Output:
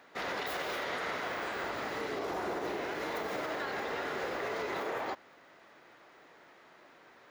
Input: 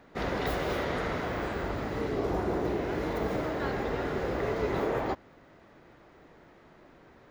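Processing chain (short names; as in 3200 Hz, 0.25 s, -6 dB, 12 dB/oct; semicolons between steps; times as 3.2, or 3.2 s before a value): HPF 1100 Hz 6 dB/oct; limiter -31 dBFS, peak gain reduction 6.5 dB; gain +4 dB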